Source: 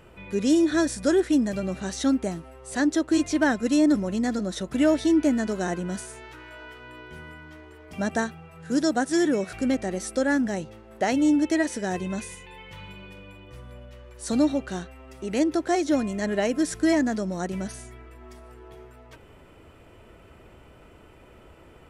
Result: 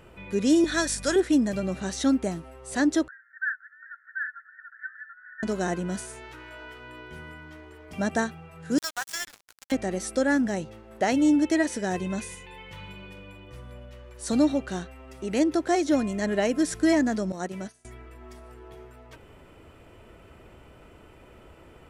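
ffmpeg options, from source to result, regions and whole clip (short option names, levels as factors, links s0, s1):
-filter_complex "[0:a]asettb=1/sr,asplit=3[s0][s1][s2];[s0]atrim=end=0.644[s3];[s1]atrim=start=0.64:end=1.16,asetpts=PTS-STARTPTS,afade=t=in:d=0.004:c=qsin,afade=t=out:st=0.516:d=0.004:c=qsin,highpass=f=1400:p=1,acontrast=33,aeval=exprs='val(0)+0.01*(sin(2*PI*50*n/s)+sin(2*PI*2*50*n/s)/2+sin(2*PI*3*50*n/s)/3+sin(2*PI*4*50*n/s)/4+sin(2*PI*5*50*n/s)/5)':c=same[s4];[s2]atrim=start=1.156[s5];[s3][s4]acrossfade=d=0.004:c1=hsin:c2=qsin[s6];[s6][s5]acrossfade=d=0.004:c1=qsin:c2=hsin,asettb=1/sr,asplit=3[s7][s8][s9];[s7]atrim=end=3.084[s10];[s8]atrim=start=3.08:end=5.43,asetpts=PTS-STARTPTS,afade=t=in:d=0.004:c=qsin,afade=t=out:st=2.346:d=0.004:c=qsin,asuperpass=centerf=1600:order=12:qfactor=3.3,aecho=1:1:737:0.708,atrim=end_sample=103635[s11];[s9]atrim=start=5.426[s12];[s10][s11]acrossfade=d=0.004:c1=hsin:c2=qsin[s13];[s13][s12]acrossfade=d=0.004:c1=qsin:c2=hsin,asettb=1/sr,asplit=3[s14][s15][s16];[s14]atrim=end=8.784[s17];[s15]atrim=start=8.78:end=9.72,asetpts=PTS-STARTPTS,afade=t=in:d=0.004:c=qsin,afade=t=out:st=0.936:d=0.004:c=qsin,highpass=f=1000:w=0.5412,highpass=f=1000:w=1.3066,acrusher=bits=4:mix=0:aa=0.5[s18];[s16]atrim=start=9.716[s19];[s17][s18]acrossfade=d=0.004:c1=hsin:c2=qsin[s20];[s20][s19]acrossfade=d=0.004:c1=qsin:c2=hsin,asettb=1/sr,asplit=3[s21][s22][s23];[s21]atrim=end=17.324[s24];[s22]atrim=start=17.32:end=17.85,asetpts=PTS-STARTPTS,afade=t=in:d=0.004:c=qsin,afade=t=out:st=0.526:d=0.004:c=qsin,agate=range=0.0224:threshold=0.0398:ratio=3:release=100:detection=peak,highpass=f=190:p=1[s25];[s23]atrim=start=17.846[s26];[s24][s25]acrossfade=d=0.004:c1=hsin:c2=qsin[s27];[s27][s26]acrossfade=d=0.004:c1=qsin:c2=hsin"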